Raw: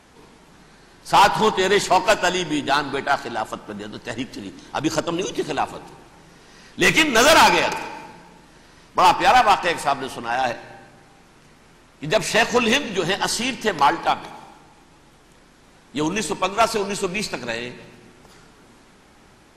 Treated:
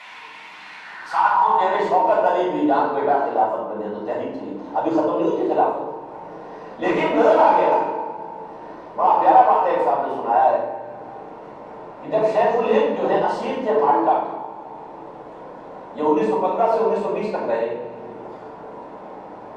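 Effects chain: bell 980 Hz +12.5 dB 0.34 oct; upward compressor, threshold -27 dBFS; band-pass sweep 2400 Hz -> 520 Hz, 0.7–1.87; limiter -19 dBFS, peak gain reduction 20.5 dB; shoebox room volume 210 m³, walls mixed, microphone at 6.5 m; gain -6 dB

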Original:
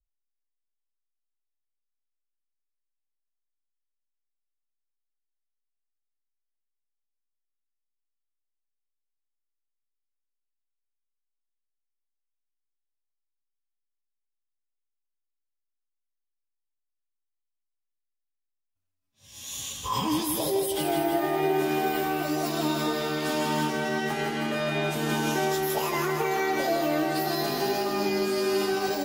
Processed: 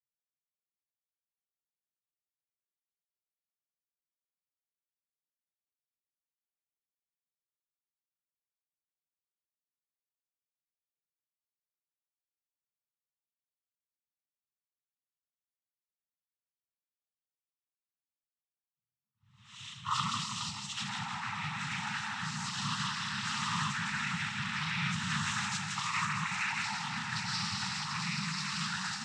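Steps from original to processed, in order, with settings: low-pass opened by the level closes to 750 Hz, open at -24.5 dBFS; noise vocoder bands 12; inverse Chebyshev band-stop 310–630 Hz, stop band 50 dB; gain -1 dB

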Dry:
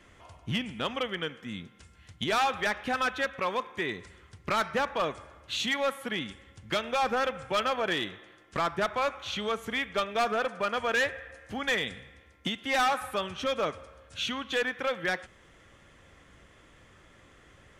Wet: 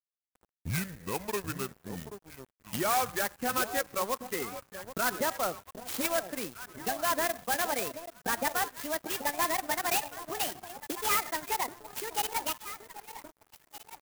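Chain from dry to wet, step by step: speed glide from 70% -> 184%; on a send: echo with dull and thin repeats by turns 0.781 s, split 850 Hz, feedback 65%, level -7.5 dB; on the sum: loudest bins only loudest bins 32; crossover distortion -44 dBFS; clock jitter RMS 0.078 ms

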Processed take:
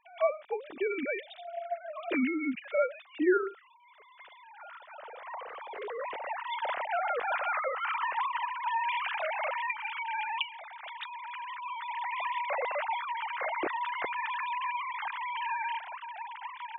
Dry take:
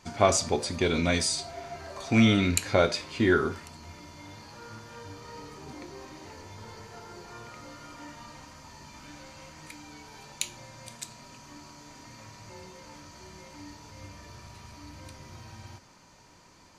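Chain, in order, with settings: sine-wave speech; recorder AGC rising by 8.3 dB/s; 5.47–6.12 transient shaper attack -12 dB, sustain +5 dB; gain -7 dB

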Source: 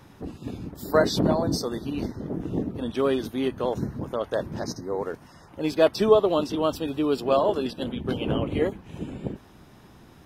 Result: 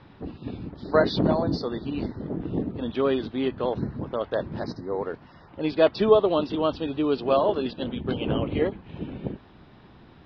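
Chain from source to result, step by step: steep low-pass 4600 Hz 48 dB/oct

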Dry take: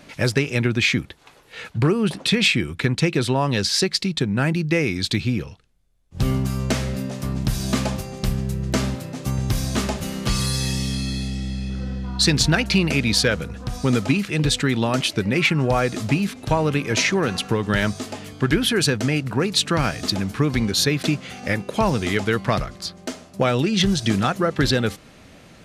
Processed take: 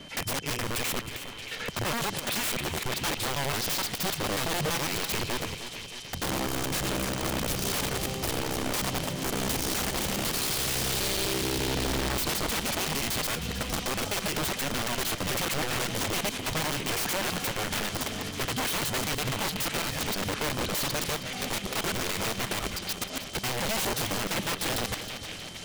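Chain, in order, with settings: local time reversal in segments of 84 ms; compressor 16:1, threshold -23 dBFS, peak gain reduction 11 dB; wrapped overs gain 24.5 dB; whine 3100 Hz -48 dBFS; on a send: delay with a stepping band-pass 0.626 s, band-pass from 2800 Hz, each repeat 0.7 oct, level -7 dB; on the sum: warbling echo 0.314 s, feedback 58%, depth 111 cents, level -11.5 dB

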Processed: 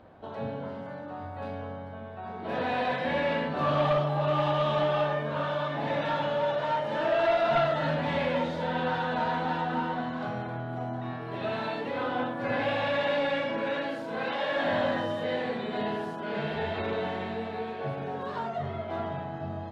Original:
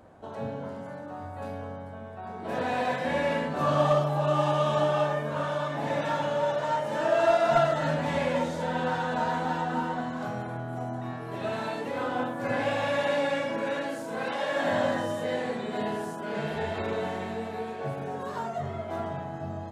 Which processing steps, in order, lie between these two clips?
soft clip -18.5 dBFS, distortion -18 dB; resonant high shelf 5400 Hz -12.5 dB, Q 1.5

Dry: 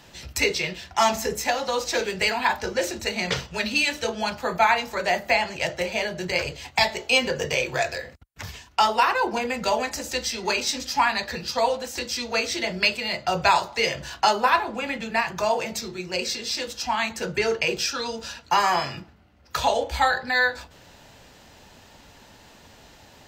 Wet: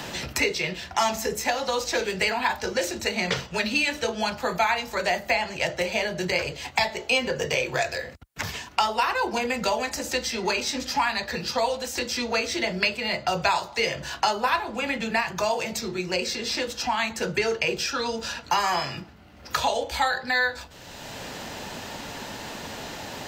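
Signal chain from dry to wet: three-band squash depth 70%; gain -1.5 dB

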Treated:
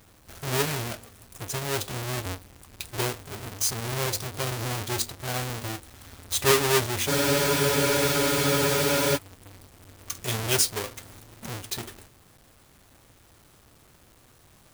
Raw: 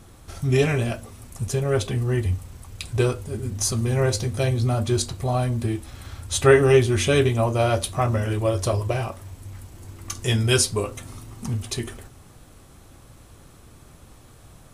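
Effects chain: half-waves squared off; tilt +2 dB/oct; spectral freeze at 7.1, 2.06 s; gain -9.5 dB

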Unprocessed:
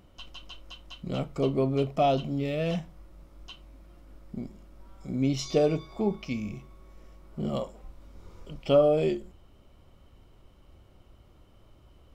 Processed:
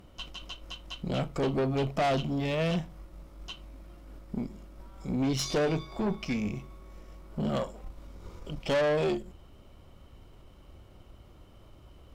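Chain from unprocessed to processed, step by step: dynamic EQ 420 Hz, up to -3 dB, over -34 dBFS, Q 0.94; tube stage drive 30 dB, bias 0.6; gain +6.5 dB

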